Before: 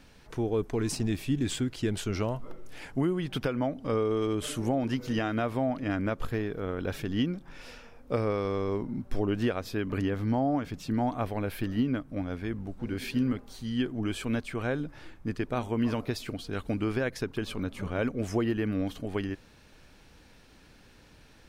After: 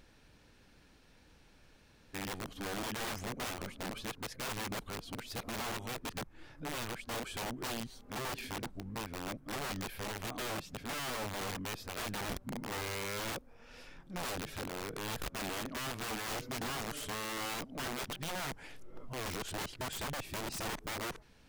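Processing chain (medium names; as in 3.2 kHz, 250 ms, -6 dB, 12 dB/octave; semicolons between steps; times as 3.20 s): reverse the whole clip; integer overflow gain 27 dB; trim -6.5 dB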